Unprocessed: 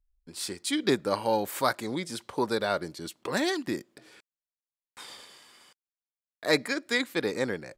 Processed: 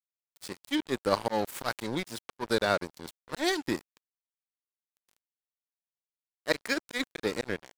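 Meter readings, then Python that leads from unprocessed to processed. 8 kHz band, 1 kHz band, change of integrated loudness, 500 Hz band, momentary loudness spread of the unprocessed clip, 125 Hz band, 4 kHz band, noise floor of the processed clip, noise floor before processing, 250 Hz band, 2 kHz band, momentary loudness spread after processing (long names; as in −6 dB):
−4.5 dB, −2.0 dB, −2.0 dB, −2.5 dB, 15 LU, −2.0 dB, −2.5 dB, below −85 dBFS, below −85 dBFS, −2.5 dB, −2.0 dB, 13 LU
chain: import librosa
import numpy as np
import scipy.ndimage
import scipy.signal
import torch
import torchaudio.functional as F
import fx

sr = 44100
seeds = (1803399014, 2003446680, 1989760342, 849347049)

y = fx.auto_swell(x, sr, attack_ms=112.0)
y = np.sign(y) * np.maximum(np.abs(y) - 10.0 ** (-37.0 / 20.0), 0.0)
y = y * librosa.db_to_amplitude(3.5)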